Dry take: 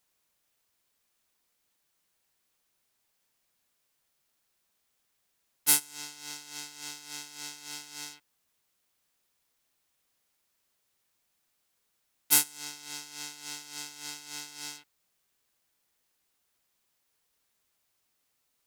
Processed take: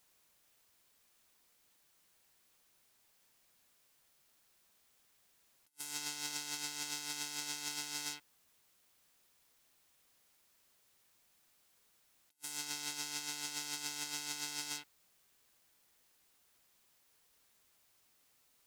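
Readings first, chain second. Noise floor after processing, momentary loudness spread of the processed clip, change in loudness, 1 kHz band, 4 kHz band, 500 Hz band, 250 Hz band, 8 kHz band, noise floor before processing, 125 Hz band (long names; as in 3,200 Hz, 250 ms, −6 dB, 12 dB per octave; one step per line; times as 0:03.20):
−72 dBFS, 4 LU, −8.0 dB, −4.0 dB, −3.0 dB, −4.5 dB, −4.0 dB, −8.5 dB, −77 dBFS, −4.5 dB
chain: compressor whose output falls as the input rises −43 dBFS, ratio −0.5
level −1.5 dB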